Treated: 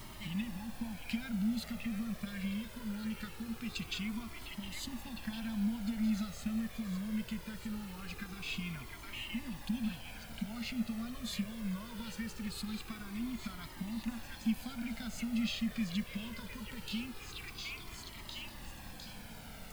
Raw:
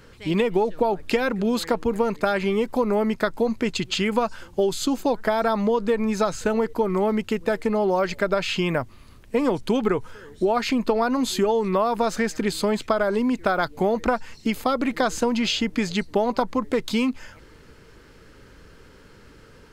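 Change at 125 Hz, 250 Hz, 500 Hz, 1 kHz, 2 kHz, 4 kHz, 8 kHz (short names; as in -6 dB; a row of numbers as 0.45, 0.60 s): -10.5, -12.0, -33.5, -25.5, -15.0, -12.0, -12.5 dB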